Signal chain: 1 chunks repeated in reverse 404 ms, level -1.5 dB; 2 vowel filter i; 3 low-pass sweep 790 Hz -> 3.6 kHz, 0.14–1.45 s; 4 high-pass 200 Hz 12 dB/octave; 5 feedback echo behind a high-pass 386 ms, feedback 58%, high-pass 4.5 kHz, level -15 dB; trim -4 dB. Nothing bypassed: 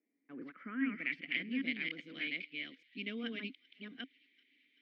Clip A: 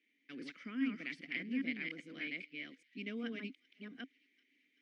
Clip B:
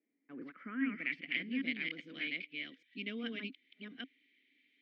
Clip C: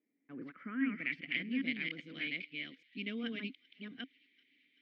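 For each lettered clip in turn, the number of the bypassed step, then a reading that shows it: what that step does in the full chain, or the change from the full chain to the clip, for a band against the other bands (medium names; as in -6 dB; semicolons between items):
3, 4 kHz band -6.0 dB; 5, echo-to-direct -28.5 dB to none; 4, 125 Hz band +3.5 dB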